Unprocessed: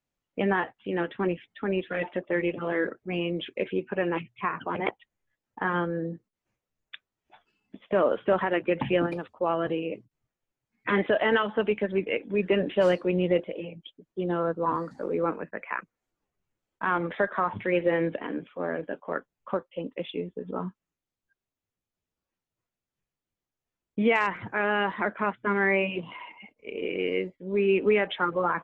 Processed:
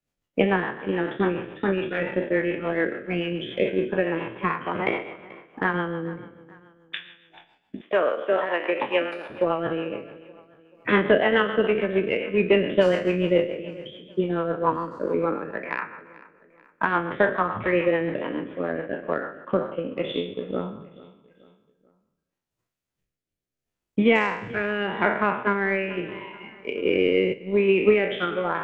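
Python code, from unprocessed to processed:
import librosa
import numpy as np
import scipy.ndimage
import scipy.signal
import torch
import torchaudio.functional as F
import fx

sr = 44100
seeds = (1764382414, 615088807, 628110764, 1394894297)

y = fx.spec_trails(x, sr, decay_s=0.96)
y = fx.highpass(y, sr, hz=500.0, slope=12, at=(7.81, 9.3))
y = fx.transient(y, sr, attack_db=7, sustain_db=-5)
y = fx.rotary_switch(y, sr, hz=7.0, then_hz=0.8, switch_at_s=19.11)
y = fx.echo_feedback(y, sr, ms=435, feedback_pct=43, wet_db=-20)
y = fx.env_flatten(y, sr, amount_pct=50, at=(26.85, 27.32), fade=0.02)
y = y * 10.0 ** (2.0 / 20.0)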